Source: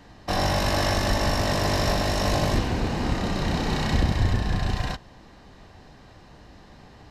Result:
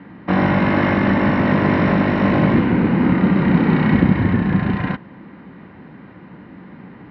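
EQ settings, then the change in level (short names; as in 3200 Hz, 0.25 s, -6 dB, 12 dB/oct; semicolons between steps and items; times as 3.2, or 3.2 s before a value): speaker cabinet 170–2900 Hz, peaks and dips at 180 Hz +6 dB, 530 Hz +7 dB, 960 Hz +7 dB, 1400 Hz +9 dB, 2100 Hz +9 dB; resonant low shelf 410 Hz +10 dB, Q 1.5; +1.5 dB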